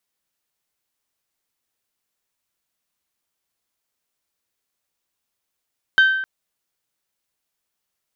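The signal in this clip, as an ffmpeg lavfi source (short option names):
-f lavfi -i "aevalsrc='0.376*pow(10,-3*t/0.94)*sin(2*PI*1550*t)+0.119*pow(10,-3*t/0.579)*sin(2*PI*3100*t)+0.0376*pow(10,-3*t/0.509)*sin(2*PI*3720*t)+0.0119*pow(10,-3*t/0.436)*sin(2*PI*4650*t)+0.00376*pow(10,-3*t/0.356)*sin(2*PI*6200*t)':d=0.26:s=44100"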